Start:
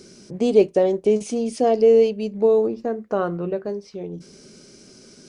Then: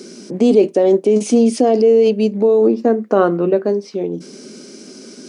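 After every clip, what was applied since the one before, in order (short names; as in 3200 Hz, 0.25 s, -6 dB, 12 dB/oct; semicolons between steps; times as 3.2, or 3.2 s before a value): in parallel at +1 dB: negative-ratio compressor -21 dBFS, ratio -0.5; on the sum: ladder high-pass 200 Hz, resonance 40%; gain +8 dB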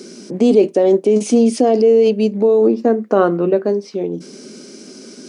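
nothing audible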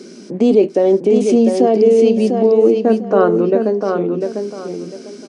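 high shelf 6400 Hz -10 dB; feedback echo 0.699 s, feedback 25%, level -5.5 dB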